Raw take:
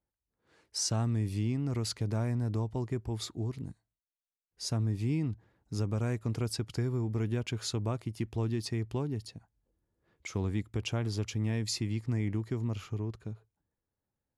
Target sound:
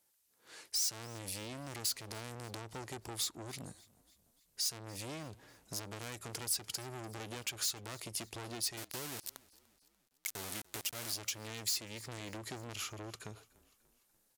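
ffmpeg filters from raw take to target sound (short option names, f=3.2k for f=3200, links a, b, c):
-filter_complex "[0:a]asettb=1/sr,asplit=3[a][b][c];[a]atrim=end=8.774[d];[b]atrim=start=8.77:end=11.13,asetpts=PTS-STARTPTS,afade=t=in:d=0.004:c=qsin,afade=t=out:st=2.356:d=0.004:c=qsin,aeval=exprs='val(0)*gte(abs(val(0)),0.0141)':c=same[e];[c]atrim=start=11.126[f];[d][e]acrossfade=d=0.004:c1=hsin:c2=qsin[g];[g][f]acrossfade=d=0.004:c1=qsin:c2=hsin,aresample=32000,aresample=44100,asoftclip=type=tanh:threshold=-38.5dB,highpass=f=450:p=1,highshelf=f=2.4k:g=9,acompressor=threshold=-51dB:ratio=2.5,highshelf=f=7.4k:g=9,asplit=5[h][i][j][k][l];[i]adelay=293,afreqshift=-31,volume=-23dB[m];[j]adelay=586,afreqshift=-62,volume=-28.4dB[n];[k]adelay=879,afreqshift=-93,volume=-33.7dB[o];[l]adelay=1172,afreqshift=-124,volume=-39.1dB[p];[h][m][n][o][p]amix=inputs=5:normalize=0,volume=8.5dB"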